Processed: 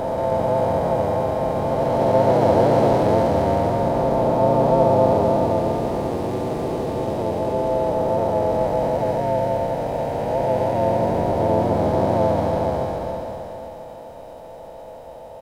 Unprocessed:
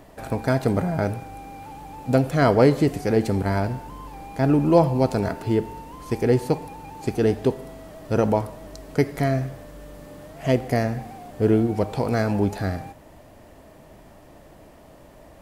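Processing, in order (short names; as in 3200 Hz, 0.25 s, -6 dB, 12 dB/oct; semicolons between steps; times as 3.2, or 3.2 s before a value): time blur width 1.25 s; small resonant body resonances 660/3800 Hz, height 17 dB, ringing for 35 ms; harmoniser -4 st -1 dB, +5 st -5 dB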